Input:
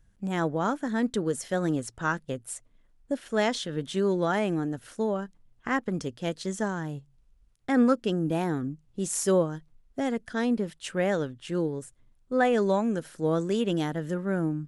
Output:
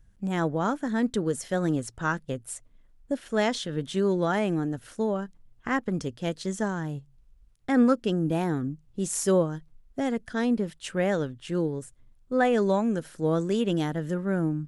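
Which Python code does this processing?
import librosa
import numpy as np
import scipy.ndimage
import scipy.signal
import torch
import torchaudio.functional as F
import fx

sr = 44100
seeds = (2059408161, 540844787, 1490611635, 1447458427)

y = fx.low_shelf(x, sr, hz=140.0, db=5.0)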